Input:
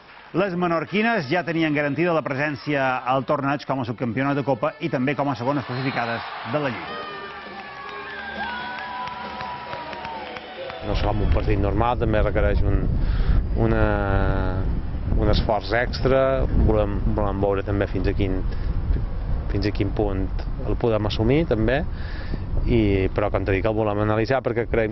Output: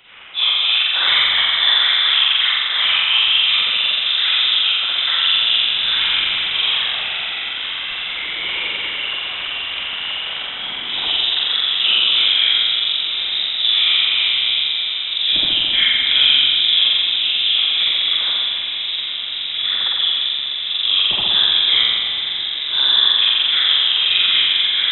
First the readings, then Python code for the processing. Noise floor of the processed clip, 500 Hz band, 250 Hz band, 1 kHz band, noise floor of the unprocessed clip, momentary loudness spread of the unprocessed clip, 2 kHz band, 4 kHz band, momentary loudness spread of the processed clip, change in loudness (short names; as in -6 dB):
-25 dBFS, -19.5 dB, under -20 dB, -5.0 dB, -37 dBFS, 11 LU, +8.0 dB, +27.0 dB, 10 LU, +9.0 dB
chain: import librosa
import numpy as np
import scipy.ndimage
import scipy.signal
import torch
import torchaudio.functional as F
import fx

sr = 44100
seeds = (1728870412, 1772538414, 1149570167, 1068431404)

y = scipy.signal.sosfilt(scipy.signal.butter(2, 140.0, 'highpass', fs=sr, output='sos'), x)
y = fx.whisperise(y, sr, seeds[0])
y = fx.echo_diffused(y, sr, ms=942, feedback_pct=77, wet_db=-12)
y = fx.rev_spring(y, sr, rt60_s=1.9, pass_ms=(43,), chirp_ms=50, drr_db=-8.5)
y = fx.freq_invert(y, sr, carrier_hz=3800)
y = y * librosa.db_to_amplitude(-3.0)